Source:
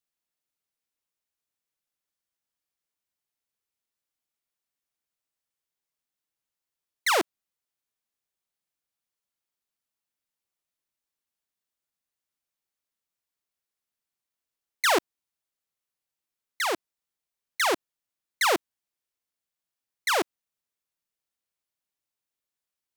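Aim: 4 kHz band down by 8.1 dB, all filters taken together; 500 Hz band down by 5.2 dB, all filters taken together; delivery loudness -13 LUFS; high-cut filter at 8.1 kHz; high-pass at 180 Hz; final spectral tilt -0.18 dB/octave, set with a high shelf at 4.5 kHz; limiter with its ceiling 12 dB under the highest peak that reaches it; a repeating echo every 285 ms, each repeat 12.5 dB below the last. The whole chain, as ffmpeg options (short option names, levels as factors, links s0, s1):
-af "highpass=180,lowpass=8100,equalizer=f=500:t=o:g=-6.5,equalizer=f=4000:t=o:g=-7,highshelf=f=4500:g=-6.5,alimiter=level_in=1.41:limit=0.0631:level=0:latency=1,volume=0.708,aecho=1:1:285|570|855:0.237|0.0569|0.0137,volume=17.8"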